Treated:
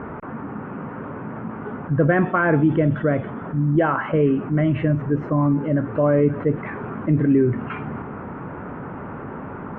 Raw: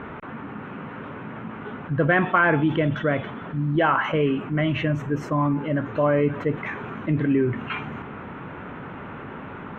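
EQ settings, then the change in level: LPF 1300 Hz 12 dB/oct; dynamic EQ 940 Hz, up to -6 dB, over -38 dBFS, Q 1.4; +4.5 dB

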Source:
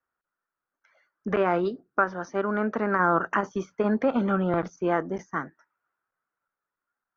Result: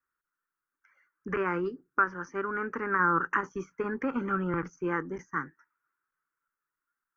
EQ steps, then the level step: bell 100 Hz -11.5 dB 0.35 oct; bell 210 Hz -11.5 dB 0.25 oct; fixed phaser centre 1600 Hz, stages 4; 0.0 dB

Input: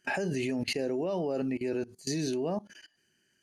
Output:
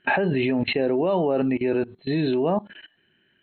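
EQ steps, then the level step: dynamic EQ 1000 Hz, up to +5 dB, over -49 dBFS, Q 1.7; brick-wall FIR low-pass 4200 Hz; +8.5 dB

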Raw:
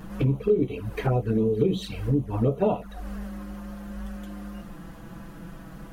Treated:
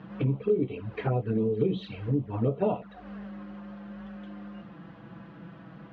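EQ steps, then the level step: HPF 82 Hz 24 dB/oct; LPF 3600 Hz 24 dB/oct; -3.5 dB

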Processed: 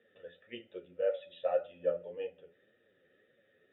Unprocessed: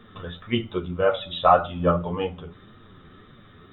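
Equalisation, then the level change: vowel filter e; -4.5 dB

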